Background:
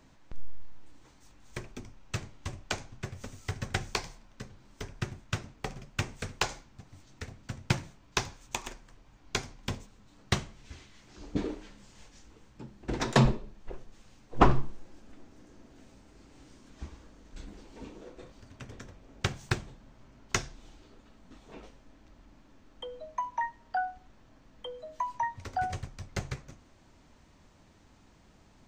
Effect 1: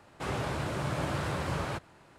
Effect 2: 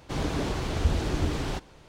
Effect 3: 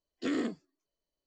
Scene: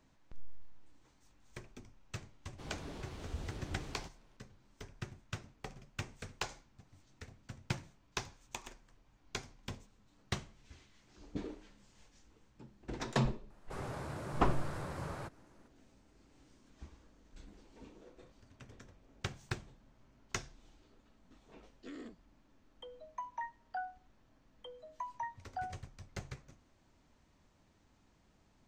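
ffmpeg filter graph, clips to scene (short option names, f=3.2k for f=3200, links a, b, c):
-filter_complex "[0:a]volume=-9.5dB[a];[1:a]equalizer=f=3k:t=o:w=1:g=-7[b];[2:a]atrim=end=1.88,asetpts=PTS-STARTPTS,volume=-17.5dB,afade=t=in:d=0.004:c=hsin,afade=t=out:st=1.876:d=0.004:c=hsin,adelay=2490[c];[b]atrim=end=2.18,asetpts=PTS-STARTPTS,volume=-9dB,afade=t=in:d=0.004:c=hsin,afade=t=out:st=2.176:d=0.004:c=hsin,adelay=13500[d];[3:a]atrim=end=1.26,asetpts=PTS-STARTPTS,volume=-16.5dB,afade=t=in:d=0.004:c=hsin,afade=t=out:st=1.256:d=0.004:c=hsin,adelay=21610[e];[a][c][d][e]amix=inputs=4:normalize=0"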